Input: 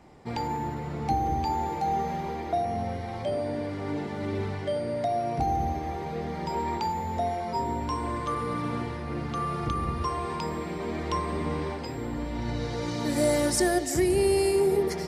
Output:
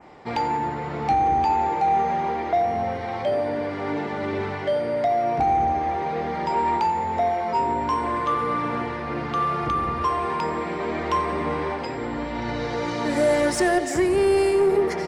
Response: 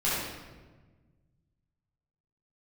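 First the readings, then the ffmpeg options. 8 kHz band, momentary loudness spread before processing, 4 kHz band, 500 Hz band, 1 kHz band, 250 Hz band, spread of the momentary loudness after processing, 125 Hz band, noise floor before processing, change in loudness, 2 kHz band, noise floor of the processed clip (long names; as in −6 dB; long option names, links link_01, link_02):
can't be measured, 9 LU, +1.5 dB, +5.0 dB, +8.0 dB, +2.5 dB, 8 LU, −1.5 dB, −35 dBFS, +5.5 dB, +7.5 dB, −30 dBFS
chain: -filter_complex "[0:a]adynamicsmooth=sensitivity=4:basefreq=7600,adynamicequalizer=threshold=0.00282:dfrequency=4200:dqfactor=1.1:tfrequency=4200:tqfactor=1.1:attack=5:release=100:ratio=0.375:range=3:mode=cutabove:tftype=bell,asplit=2[link_01][link_02];[link_02]highpass=frequency=720:poles=1,volume=14dB,asoftclip=type=tanh:threshold=-13dB[link_03];[link_01][link_03]amix=inputs=2:normalize=0,lowpass=frequency=3600:poles=1,volume=-6dB,aecho=1:1:89|178|267|356|445:0.119|0.0689|0.04|0.0232|0.0134,volume=2dB"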